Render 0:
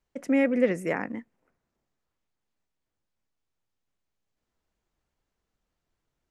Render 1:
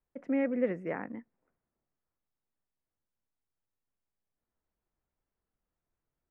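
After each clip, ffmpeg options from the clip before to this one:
ffmpeg -i in.wav -af "lowpass=1900,volume=-6.5dB" out.wav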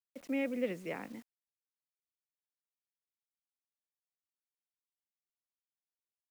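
ffmpeg -i in.wav -filter_complex "[0:a]acrossover=split=250|1000[link_01][link_02][link_03];[link_03]aexciter=amount=10.8:drive=3:freq=2600[link_04];[link_01][link_02][link_04]amix=inputs=3:normalize=0,acrusher=bits=8:mix=0:aa=0.000001,volume=-5dB" out.wav

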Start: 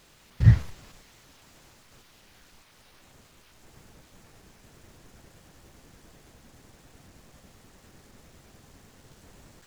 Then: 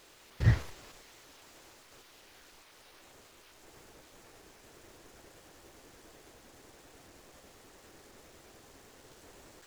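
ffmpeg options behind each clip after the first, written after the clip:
ffmpeg -i in.wav -af "lowshelf=frequency=260:width_type=q:width=1.5:gain=-7.5" out.wav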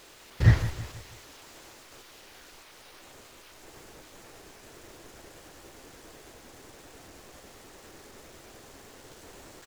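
ffmpeg -i in.wav -af "aecho=1:1:162|324|486|648:0.211|0.0909|0.0391|0.0168,volume=6dB" out.wav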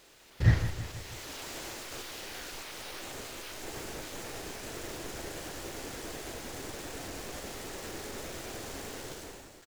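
ffmpeg -i in.wav -filter_complex "[0:a]equalizer=frequency=1100:width=2.3:gain=-2.5,dynaudnorm=framelen=100:gausssize=11:maxgain=15dB,asplit=2[link_01][link_02];[link_02]adelay=40,volume=-11.5dB[link_03];[link_01][link_03]amix=inputs=2:normalize=0,volume=-6dB" out.wav

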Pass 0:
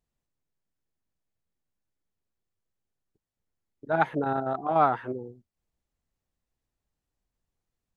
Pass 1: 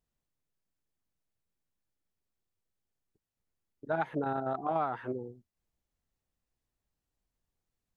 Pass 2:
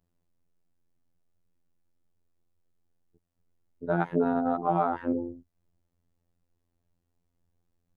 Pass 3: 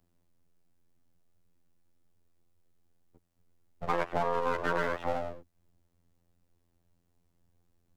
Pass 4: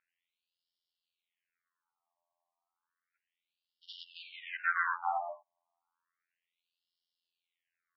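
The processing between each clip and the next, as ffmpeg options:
ffmpeg -i in.wav -af "acompressor=threshold=-25dB:ratio=10,volume=-2dB" out.wav
ffmpeg -i in.wav -af "tiltshelf=frequency=970:gain=6.5,afftfilt=real='hypot(re,im)*cos(PI*b)':imag='0':win_size=2048:overlap=0.75,volume=8dB" out.wav
ffmpeg -i in.wav -filter_complex "[0:a]aeval=exprs='abs(val(0))':channel_layout=same,acrossover=split=330|1300[link_01][link_02][link_03];[link_01]acompressor=threshold=-42dB:ratio=4[link_04];[link_02]acompressor=threshold=-33dB:ratio=4[link_05];[link_03]acompressor=threshold=-43dB:ratio=4[link_06];[link_04][link_05][link_06]amix=inputs=3:normalize=0,volume=5dB" out.wav
ffmpeg -i in.wav -af "afftfilt=real='re*between(b*sr/1024,810*pow(4000/810,0.5+0.5*sin(2*PI*0.32*pts/sr))/1.41,810*pow(4000/810,0.5+0.5*sin(2*PI*0.32*pts/sr))*1.41)':imag='im*between(b*sr/1024,810*pow(4000/810,0.5+0.5*sin(2*PI*0.32*pts/sr))/1.41,810*pow(4000/810,0.5+0.5*sin(2*PI*0.32*pts/sr))*1.41)':win_size=1024:overlap=0.75,volume=4dB" out.wav

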